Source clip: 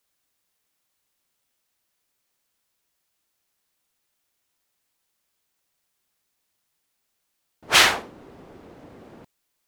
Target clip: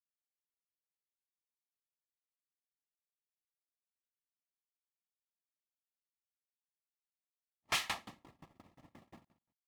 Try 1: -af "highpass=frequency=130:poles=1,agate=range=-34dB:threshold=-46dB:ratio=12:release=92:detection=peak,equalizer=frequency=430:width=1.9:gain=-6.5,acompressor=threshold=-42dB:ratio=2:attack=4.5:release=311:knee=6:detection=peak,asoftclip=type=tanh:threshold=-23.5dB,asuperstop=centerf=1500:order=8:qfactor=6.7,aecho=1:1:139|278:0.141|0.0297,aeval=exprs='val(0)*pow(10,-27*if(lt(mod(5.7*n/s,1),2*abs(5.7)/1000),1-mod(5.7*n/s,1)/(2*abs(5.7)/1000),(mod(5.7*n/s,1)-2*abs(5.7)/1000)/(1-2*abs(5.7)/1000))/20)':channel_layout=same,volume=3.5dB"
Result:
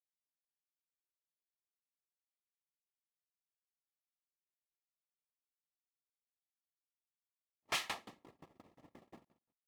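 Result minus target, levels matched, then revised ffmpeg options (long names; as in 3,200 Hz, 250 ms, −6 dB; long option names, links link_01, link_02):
downward compressor: peak gain reduction +4 dB; 500 Hz band +3.0 dB; 125 Hz band −2.0 dB
-af "highpass=frequency=51:poles=1,agate=range=-34dB:threshold=-46dB:ratio=12:release=92:detection=peak,equalizer=frequency=430:width=1.9:gain=-15.5,acompressor=threshold=-34dB:ratio=2:attack=4.5:release=311:knee=6:detection=peak,asoftclip=type=tanh:threshold=-23.5dB,asuperstop=centerf=1500:order=8:qfactor=6.7,aecho=1:1:139|278:0.141|0.0297,aeval=exprs='val(0)*pow(10,-27*if(lt(mod(5.7*n/s,1),2*abs(5.7)/1000),1-mod(5.7*n/s,1)/(2*abs(5.7)/1000),(mod(5.7*n/s,1)-2*abs(5.7)/1000)/(1-2*abs(5.7)/1000))/20)':channel_layout=same,volume=3.5dB"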